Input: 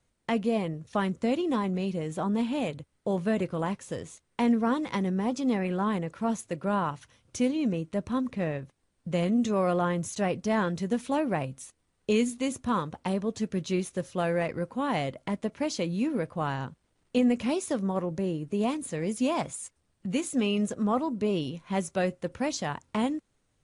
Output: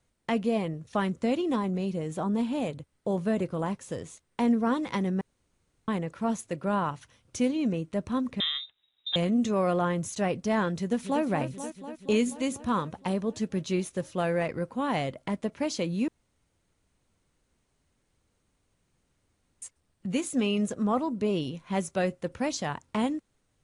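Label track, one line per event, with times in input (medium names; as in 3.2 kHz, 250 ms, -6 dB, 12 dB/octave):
1.550000	4.660000	dynamic bell 2.4 kHz, up to -4 dB, over -44 dBFS, Q 0.74
5.210000	5.880000	room tone
8.400000	9.160000	frequency inversion carrier 3.8 kHz
10.780000	11.230000	echo throw 240 ms, feedback 75%, level -9.5 dB
16.080000	19.620000	room tone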